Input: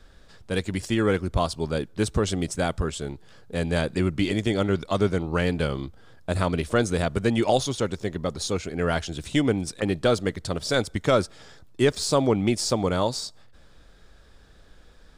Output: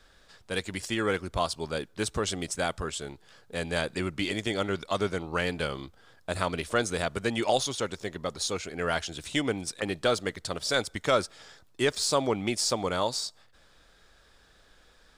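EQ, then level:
low-shelf EQ 440 Hz −11 dB
0.0 dB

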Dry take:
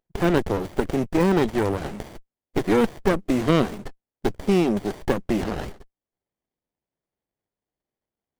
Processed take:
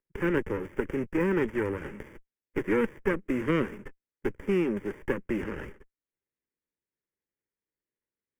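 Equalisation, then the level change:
three-way crossover with the lows and the highs turned down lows −13 dB, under 400 Hz, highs −17 dB, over 2,500 Hz
parametric band 1,200 Hz −9.5 dB 0.91 octaves
phaser with its sweep stopped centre 1,700 Hz, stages 4
+4.0 dB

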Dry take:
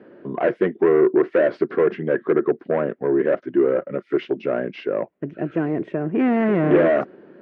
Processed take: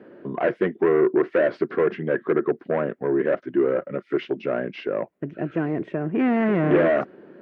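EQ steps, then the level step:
dynamic equaliser 410 Hz, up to −3 dB, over −30 dBFS, Q 0.72
0.0 dB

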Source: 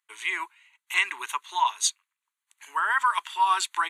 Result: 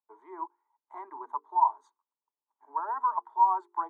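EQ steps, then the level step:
elliptic band-pass filter 250–910 Hz, stop band 50 dB
mains-hum notches 50/100/150/200/250/300/350/400/450 Hz
+3.5 dB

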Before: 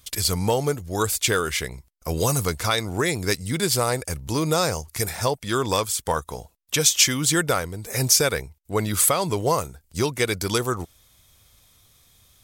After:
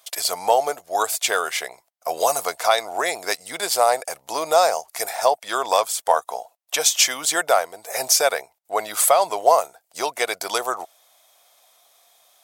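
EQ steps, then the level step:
high-pass with resonance 690 Hz, resonance Q 4.9
0.0 dB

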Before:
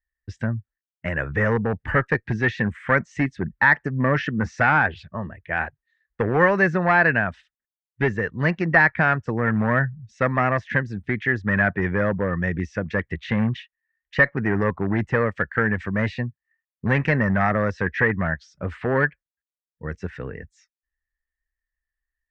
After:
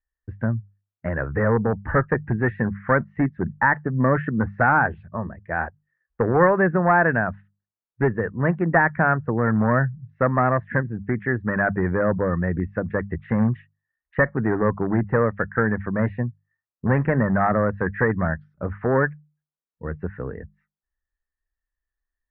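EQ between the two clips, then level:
low-pass filter 1,500 Hz 24 dB per octave
mains-hum notches 50/100/150/200 Hz
+2.0 dB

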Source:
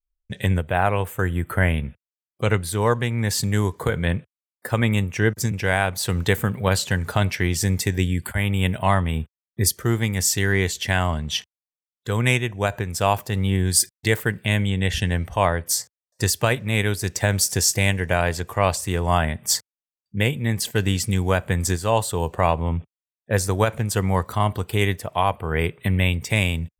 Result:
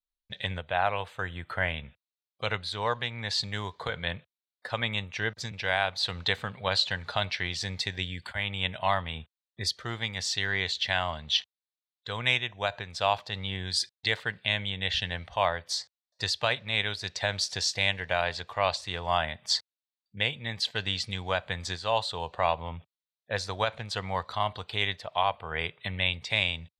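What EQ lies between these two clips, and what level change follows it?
low-pass with resonance 4,000 Hz, resonance Q 4.2
low shelf with overshoot 480 Hz −8 dB, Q 1.5
−7.5 dB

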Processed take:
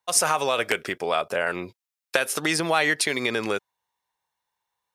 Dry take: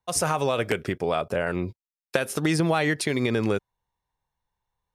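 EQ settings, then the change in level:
high-pass filter 960 Hz 6 dB per octave
+6.0 dB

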